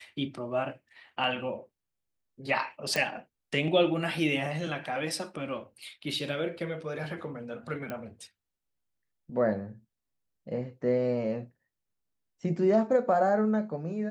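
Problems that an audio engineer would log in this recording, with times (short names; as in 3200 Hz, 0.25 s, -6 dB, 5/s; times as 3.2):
2.96 pop
7.9 pop -22 dBFS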